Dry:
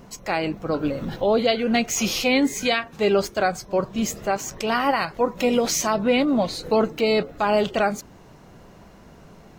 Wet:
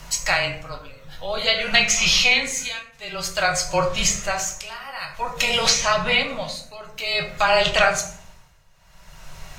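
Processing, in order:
frequency shifter −18 Hz
guitar amp tone stack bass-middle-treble 10-0-10
in parallel at +2 dB: downward compressor, threshold −30 dBFS, peak gain reduction 9 dB
on the sum: amplitude tremolo 0.52 Hz, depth 91%
treble cut that deepens with the level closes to 1,600 Hz, closed at −15 dBFS
on a send at −1.5 dB: convolution reverb RT60 0.60 s, pre-delay 3 ms
on the sum: level +8 dB

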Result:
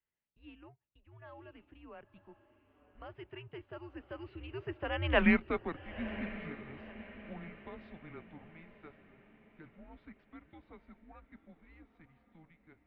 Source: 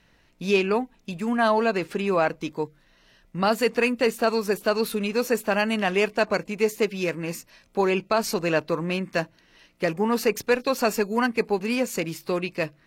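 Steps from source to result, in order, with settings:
source passing by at 0:05.22, 41 m/s, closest 2.9 metres
in parallel at −2 dB: downward compressor, threshold −50 dBFS, peak gain reduction 26 dB
on the sum: feedback delay with all-pass diffusion 997 ms, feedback 44%, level −14 dB
single-sideband voice off tune −160 Hz 190–3,200 Hz

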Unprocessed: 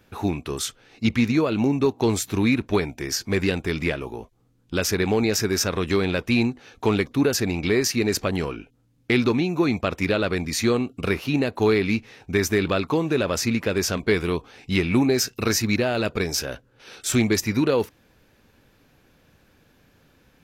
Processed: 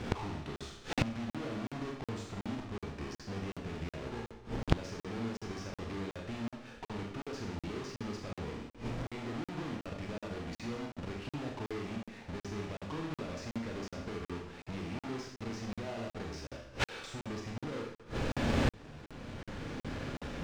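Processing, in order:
each half-wave held at its own peak
camcorder AGC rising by 13 dB per second
high-shelf EQ 8,900 Hz +9.5 dB
brickwall limiter −7 dBFS, peak gain reduction 6.5 dB
downward compressor 16 to 1, threshold −25 dBFS, peak gain reduction 11.5 dB
tube saturation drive 25 dB, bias 0.5
high-frequency loss of the air 130 metres
four-comb reverb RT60 0.74 s, combs from 27 ms, DRR −0.5 dB
gate with flip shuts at −33 dBFS, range −25 dB
regular buffer underruns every 0.37 s, samples 2,048, zero, from 0:00.56
level +14.5 dB

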